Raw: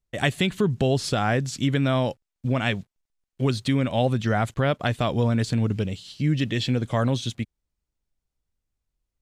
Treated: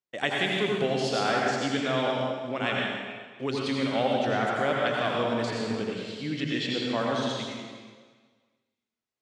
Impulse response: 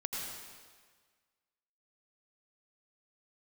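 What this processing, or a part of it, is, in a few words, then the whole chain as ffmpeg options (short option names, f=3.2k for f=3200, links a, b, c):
supermarket ceiling speaker: -filter_complex "[0:a]highpass=300,lowpass=6.1k[a];[1:a]atrim=start_sample=2205[b];[a][b]afir=irnorm=-1:irlink=0,volume=-2dB"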